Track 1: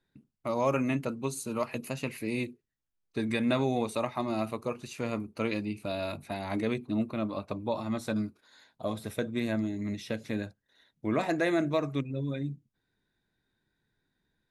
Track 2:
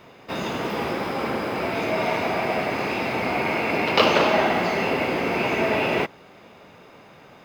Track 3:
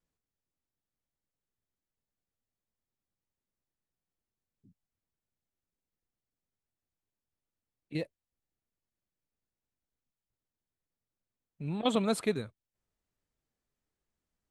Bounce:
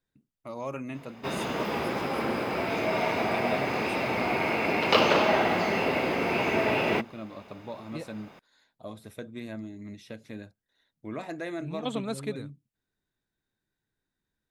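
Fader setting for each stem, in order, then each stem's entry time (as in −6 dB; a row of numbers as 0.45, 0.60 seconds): −8.0, −3.5, −4.0 decibels; 0.00, 0.95, 0.00 seconds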